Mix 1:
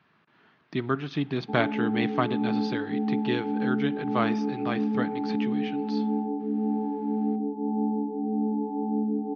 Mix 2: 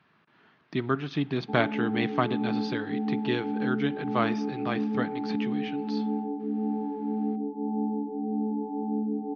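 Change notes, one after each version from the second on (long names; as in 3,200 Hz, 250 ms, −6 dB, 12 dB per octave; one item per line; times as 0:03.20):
background: send −11.5 dB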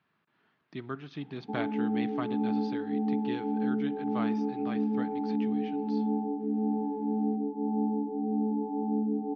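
speech −10.5 dB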